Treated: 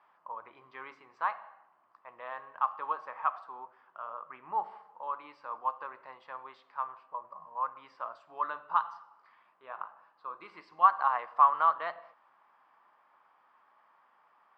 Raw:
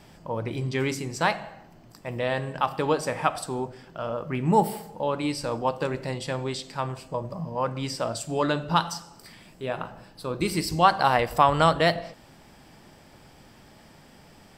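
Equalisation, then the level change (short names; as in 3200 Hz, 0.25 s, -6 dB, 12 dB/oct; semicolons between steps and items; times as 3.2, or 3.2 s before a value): ladder band-pass 1200 Hz, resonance 70%; air absorption 100 m; tilt -2 dB/oct; +1.5 dB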